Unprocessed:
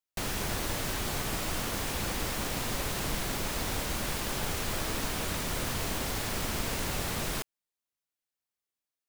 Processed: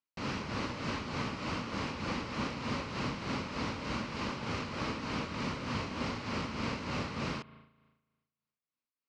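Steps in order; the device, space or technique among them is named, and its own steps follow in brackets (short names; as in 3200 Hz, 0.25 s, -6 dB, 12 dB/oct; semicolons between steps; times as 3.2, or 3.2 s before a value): combo amplifier with spring reverb and tremolo (spring tank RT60 1.3 s, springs 36 ms, chirp 50 ms, DRR 16.5 dB; tremolo 3.3 Hz, depth 54%; speaker cabinet 94–4500 Hz, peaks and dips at 240 Hz +5 dB, 380 Hz -4 dB, 710 Hz -8 dB, 1100 Hz +3 dB, 1700 Hz -6 dB, 3500 Hz -9 dB); gain +2 dB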